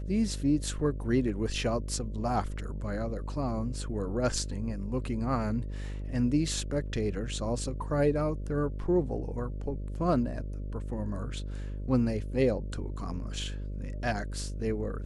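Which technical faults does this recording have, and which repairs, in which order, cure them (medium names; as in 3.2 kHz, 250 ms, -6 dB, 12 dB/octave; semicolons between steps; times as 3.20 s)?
buzz 50 Hz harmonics 12 -36 dBFS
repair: de-hum 50 Hz, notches 12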